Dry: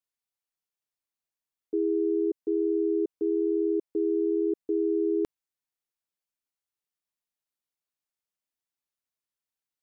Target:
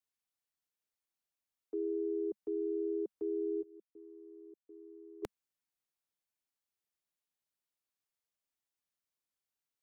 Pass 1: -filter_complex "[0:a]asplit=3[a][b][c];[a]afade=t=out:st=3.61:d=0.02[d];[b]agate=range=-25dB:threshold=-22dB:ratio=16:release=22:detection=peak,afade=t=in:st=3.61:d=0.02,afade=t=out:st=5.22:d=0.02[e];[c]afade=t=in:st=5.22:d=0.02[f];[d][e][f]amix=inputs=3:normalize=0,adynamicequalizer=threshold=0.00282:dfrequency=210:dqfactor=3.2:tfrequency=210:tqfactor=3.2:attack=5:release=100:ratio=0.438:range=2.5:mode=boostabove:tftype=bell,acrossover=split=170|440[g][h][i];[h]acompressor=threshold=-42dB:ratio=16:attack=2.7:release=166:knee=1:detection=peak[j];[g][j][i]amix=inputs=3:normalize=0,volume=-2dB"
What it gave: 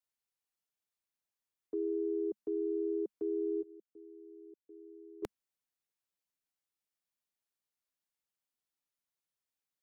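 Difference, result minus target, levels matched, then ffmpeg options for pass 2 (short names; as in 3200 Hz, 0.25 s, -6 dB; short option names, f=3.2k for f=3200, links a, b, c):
compressor: peak gain reduction -8 dB
-filter_complex "[0:a]asplit=3[a][b][c];[a]afade=t=out:st=3.61:d=0.02[d];[b]agate=range=-25dB:threshold=-22dB:ratio=16:release=22:detection=peak,afade=t=in:st=3.61:d=0.02,afade=t=out:st=5.22:d=0.02[e];[c]afade=t=in:st=5.22:d=0.02[f];[d][e][f]amix=inputs=3:normalize=0,adynamicequalizer=threshold=0.00282:dfrequency=210:dqfactor=3.2:tfrequency=210:tqfactor=3.2:attack=5:release=100:ratio=0.438:range=2.5:mode=boostabove:tftype=bell,acrossover=split=170|440[g][h][i];[h]acompressor=threshold=-50.5dB:ratio=16:attack=2.7:release=166:knee=1:detection=peak[j];[g][j][i]amix=inputs=3:normalize=0,volume=-2dB"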